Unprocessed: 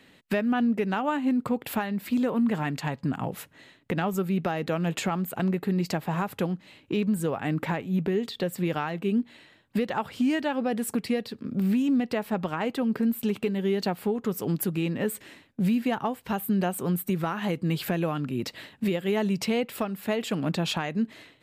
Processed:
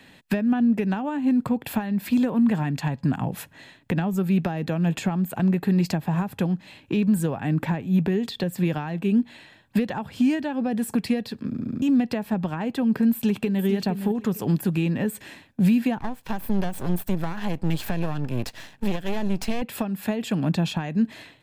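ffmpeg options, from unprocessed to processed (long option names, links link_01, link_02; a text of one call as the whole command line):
ffmpeg -i in.wav -filter_complex "[0:a]asplit=2[link_01][link_02];[link_02]afade=type=in:start_time=13.12:duration=0.01,afade=type=out:start_time=13.65:duration=0.01,aecho=0:1:460|920|1380:0.398107|0.0796214|0.0159243[link_03];[link_01][link_03]amix=inputs=2:normalize=0,asettb=1/sr,asplit=3[link_04][link_05][link_06];[link_04]atrim=end=15.984[link_07];[link_05]atrim=start=15.98:end=19.62,asetpts=PTS-STARTPTS,afade=type=in:duration=0.004:curve=qsin,afade=type=out:start_time=3.636:duration=0.004:curve=qsin,aeval=exprs='max(val(0),0)':channel_layout=same[link_08];[link_06]atrim=start=19.616[link_09];[link_07][link_08]acrossfade=duration=0.004:curve1=hsin:curve2=qsin[link_10];[link_10][link_09]acrossfade=duration=0.004:curve1=qsin:curve2=hsin,asplit=6[link_11][link_12][link_13][link_14][link_15][link_16];[link_11]atrim=end=11.542[link_17];[link_12]atrim=start=11.468:end=11.542[link_18];[link_13]atrim=start=11.468:end=11.542[link_19];[link_14]atrim=start=11.468:end=11.542[link_20];[link_15]atrim=start=11.468:end=11.542[link_21];[link_16]atrim=start=11.818[link_22];[link_17][link_18]acrossfade=duration=0.004:curve1=hsin:curve2=hsin[link_23];[link_23][link_19]acrossfade=duration=0.004:curve1=hsin:curve2=hsin[link_24];[link_24][link_20]acrossfade=duration=0.004:curve1=hsin:curve2=hsin[link_25];[link_25][link_21]acrossfade=duration=0.004:curve1=hsin:curve2=hsin[link_26];[link_26][link_22]acrossfade=duration=0.004:curve1=hsin:curve2=hsin,deesser=0.55,aecho=1:1:1.2:0.32,acrossover=split=390[link_27][link_28];[link_28]acompressor=threshold=-36dB:ratio=6[link_29];[link_27][link_29]amix=inputs=2:normalize=0,volume=5dB" out.wav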